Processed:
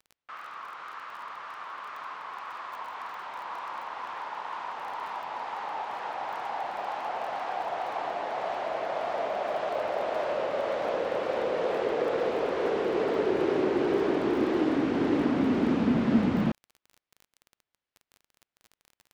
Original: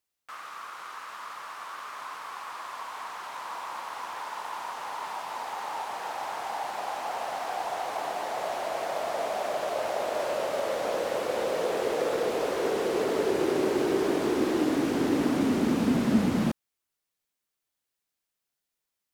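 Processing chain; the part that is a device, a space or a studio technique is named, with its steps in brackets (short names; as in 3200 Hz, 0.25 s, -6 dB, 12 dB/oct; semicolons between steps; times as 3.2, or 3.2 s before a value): lo-fi chain (LPF 3200 Hz 12 dB/oct; wow and flutter; crackle 20/s -39 dBFS)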